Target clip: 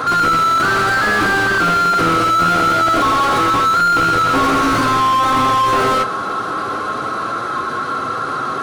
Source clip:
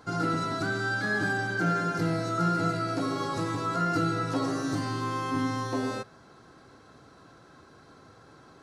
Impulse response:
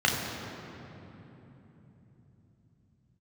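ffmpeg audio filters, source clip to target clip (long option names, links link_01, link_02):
-filter_complex "[0:a]asplit=2[link_01][link_02];[link_02]acrusher=samples=29:mix=1:aa=0.000001:lfo=1:lforange=17.4:lforate=0.27,volume=-7dB[link_03];[link_01][link_03]amix=inputs=2:normalize=0,equalizer=frequency=3700:width_type=o:width=0.85:gain=3.5,flanger=delay=7.9:depth=2:regen=-40:speed=0.24:shape=sinusoidal,superequalizer=10b=3.16:15b=1.58:16b=3.16,asplit=2[link_04][link_05];[link_05]highpass=frequency=720:poles=1,volume=37dB,asoftclip=type=tanh:threshold=-12.5dB[link_06];[link_04][link_06]amix=inputs=2:normalize=0,lowpass=frequency=1500:poles=1,volume=-6dB,volume=6.5dB"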